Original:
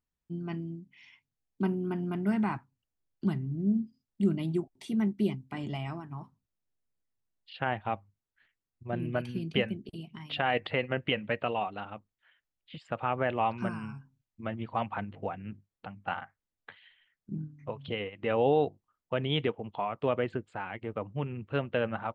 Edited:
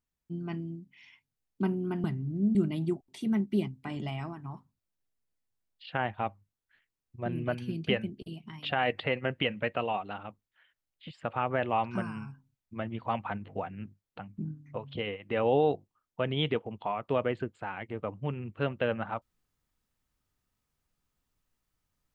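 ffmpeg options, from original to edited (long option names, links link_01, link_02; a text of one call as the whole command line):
ffmpeg -i in.wav -filter_complex "[0:a]asplit=4[link_01][link_02][link_03][link_04];[link_01]atrim=end=2.042[link_05];[link_02]atrim=start=3.278:end=3.792[link_06];[link_03]atrim=start=4.218:end=16.052[link_07];[link_04]atrim=start=17.308[link_08];[link_05][link_06]acrossfade=duration=0.004:curve1=hsin:curve2=hsin[link_09];[link_09][link_07]acrossfade=duration=0.004:curve1=hsin:curve2=hsin[link_10];[link_10][link_08]acrossfade=duration=0.004:curve1=hsin:curve2=hsin" out.wav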